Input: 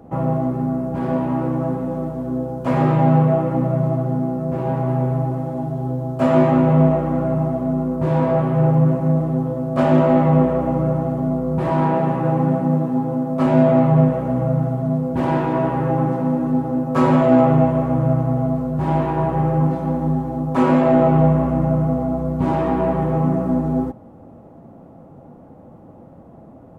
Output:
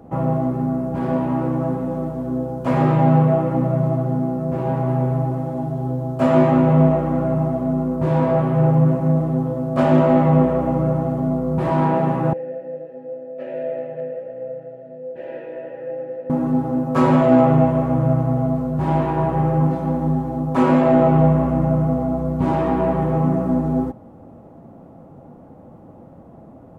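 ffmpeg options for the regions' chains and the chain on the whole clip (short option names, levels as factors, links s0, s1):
-filter_complex "[0:a]asettb=1/sr,asplit=3[s0][s1][s2];[s0]atrim=end=12.334[s3];[s1]atrim=start=12.33:end=16.3,asetpts=PTS-STARTPTS,afade=t=in:d=0.004:c=qsin,afade=t=out:st=3.966:d=0.004:c=qsin,asoftclip=type=hard:threshold=0.531,asplit=3[s4][s5][s6];[s4]bandpass=f=530:t=q:w=8,volume=1[s7];[s5]bandpass=f=1840:t=q:w=8,volume=0.501[s8];[s6]bandpass=f=2480:t=q:w=8,volume=0.355[s9];[s7][s8][s9]amix=inputs=3:normalize=0,bandreject=f=50:t=h:w=6,bandreject=f=100:t=h:w=6,bandreject=f=150:t=h:w=6,bandreject=f=200:t=h:w=6,bandreject=f=250:t=h:w=6,bandreject=f=300:t=h:w=6,bandreject=f=350:t=h:w=6,bandreject=f=400:t=h:w=6[s10];[s2]atrim=start=16.296[s11];[s3][s10]acrossfade=d=0.004:c1=hsin:c2=qsin[s12];[s12][s11]acrossfade=d=0.004:c1=qsin:c2=hsin"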